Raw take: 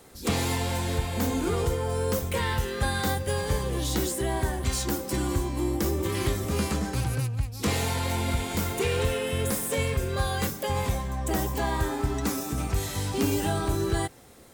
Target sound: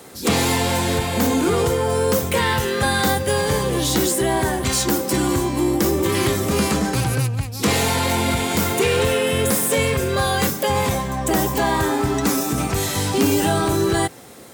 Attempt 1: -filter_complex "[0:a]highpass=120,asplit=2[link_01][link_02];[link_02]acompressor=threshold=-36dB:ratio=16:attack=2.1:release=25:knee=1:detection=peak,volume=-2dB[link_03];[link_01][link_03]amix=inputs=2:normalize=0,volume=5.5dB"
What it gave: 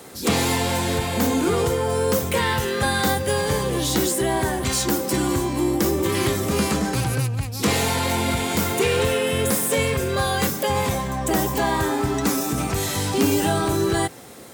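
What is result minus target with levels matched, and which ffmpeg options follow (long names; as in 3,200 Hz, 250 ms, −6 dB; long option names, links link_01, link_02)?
downward compressor: peak gain reduction +8 dB
-filter_complex "[0:a]highpass=120,asplit=2[link_01][link_02];[link_02]acompressor=threshold=-27.5dB:ratio=16:attack=2.1:release=25:knee=1:detection=peak,volume=-2dB[link_03];[link_01][link_03]amix=inputs=2:normalize=0,volume=5.5dB"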